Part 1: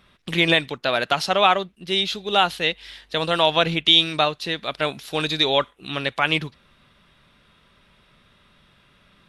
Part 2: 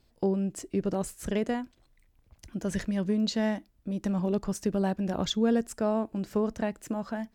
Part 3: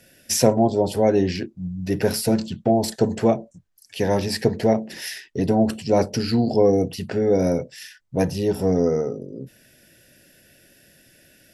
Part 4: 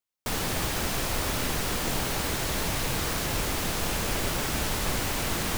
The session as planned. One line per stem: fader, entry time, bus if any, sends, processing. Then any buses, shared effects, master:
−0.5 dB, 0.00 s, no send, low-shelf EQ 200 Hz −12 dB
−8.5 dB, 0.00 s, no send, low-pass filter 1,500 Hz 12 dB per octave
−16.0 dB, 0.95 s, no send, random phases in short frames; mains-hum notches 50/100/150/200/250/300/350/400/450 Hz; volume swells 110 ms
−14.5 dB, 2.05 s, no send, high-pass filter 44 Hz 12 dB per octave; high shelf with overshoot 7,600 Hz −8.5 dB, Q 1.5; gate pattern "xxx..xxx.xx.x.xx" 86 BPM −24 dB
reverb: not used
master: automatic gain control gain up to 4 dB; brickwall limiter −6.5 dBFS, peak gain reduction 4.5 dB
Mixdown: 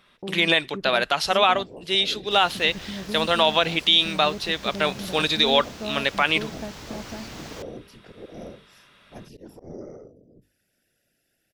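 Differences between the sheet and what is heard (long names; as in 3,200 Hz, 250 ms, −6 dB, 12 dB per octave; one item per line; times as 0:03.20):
stem 3 −16.0 dB → −22.5 dB
stem 4: missing gate pattern "xxx..xxx.xx.x.xx" 86 BPM −24 dB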